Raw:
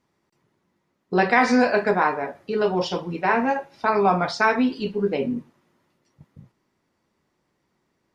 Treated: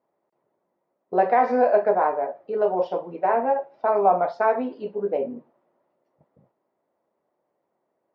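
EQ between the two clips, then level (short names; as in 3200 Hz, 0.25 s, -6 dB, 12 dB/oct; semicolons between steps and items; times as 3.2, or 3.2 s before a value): band-pass 620 Hz, Q 2.7; air absorption 58 m; +6.0 dB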